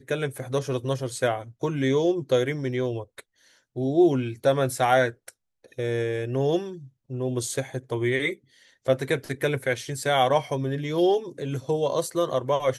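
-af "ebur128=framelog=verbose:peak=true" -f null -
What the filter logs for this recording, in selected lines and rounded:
Integrated loudness:
  I:         -25.6 LUFS
  Threshold: -36.1 LUFS
Loudness range:
  LRA:         3.6 LU
  Threshold: -46.1 LUFS
  LRA low:   -28.3 LUFS
  LRA high:  -24.6 LUFS
True peak:
  Peak:       -8.3 dBFS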